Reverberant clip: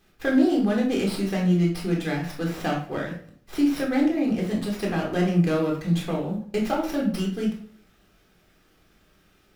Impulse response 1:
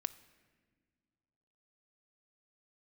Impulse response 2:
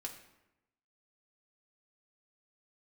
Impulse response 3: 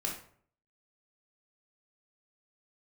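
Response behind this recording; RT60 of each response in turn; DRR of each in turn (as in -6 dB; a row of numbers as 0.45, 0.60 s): 3; not exponential, 0.95 s, 0.55 s; 11.5, 1.0, -1.0 dB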